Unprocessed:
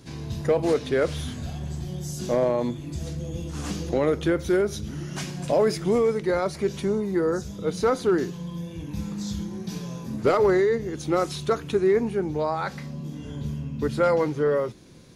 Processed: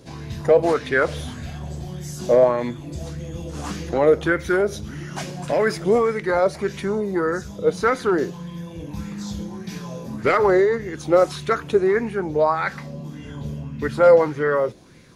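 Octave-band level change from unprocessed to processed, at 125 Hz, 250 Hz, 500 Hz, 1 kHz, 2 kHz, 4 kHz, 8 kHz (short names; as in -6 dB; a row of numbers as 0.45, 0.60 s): 0.0, +1.0, +4.5, +6.0, +8.5, +1.0, 0.0 dB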